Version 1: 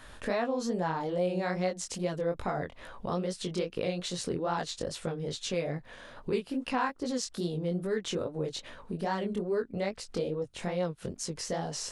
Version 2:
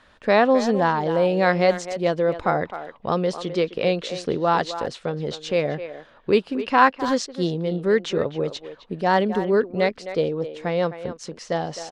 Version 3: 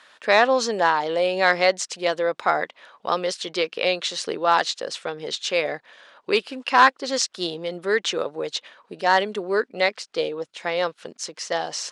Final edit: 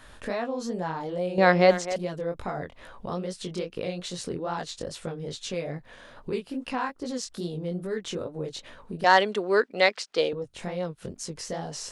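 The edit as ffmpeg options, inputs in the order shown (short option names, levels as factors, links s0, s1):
-filter_complex "[0:a]asplit=3[s0][s1][s2];[s0]atrim=end=1.382[s3];[1:a]atrim=start=1.378:end=1.962[s4];[s1]atrim=start=1.958:end=9.042[s5];[2:a]atrim=start=9.038:end=10.332[s6];[s2]atrim=start=10.328[s7];[s3][s4]acrossfade=d=0.004:c1=hsin:c2=hsin[s8];[s8][s5]acrossfade=d=0.004:c1=hsin:c2=hsin[s9];[s9][s6]acrossfade=d=0.004:c1=hsin:c2=hsin[s10];[s10][s7]acrossfade=d=0.004:c1=hsin:c2=hsin"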